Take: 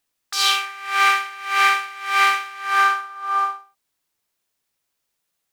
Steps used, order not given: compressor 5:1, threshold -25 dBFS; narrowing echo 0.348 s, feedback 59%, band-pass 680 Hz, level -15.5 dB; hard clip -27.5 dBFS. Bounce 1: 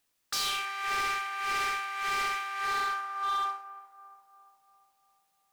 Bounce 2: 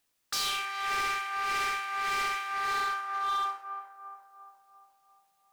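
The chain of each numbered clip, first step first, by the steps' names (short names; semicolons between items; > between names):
compressor > narrowing echo > hard clip; narrowing echo > compressor > hard clip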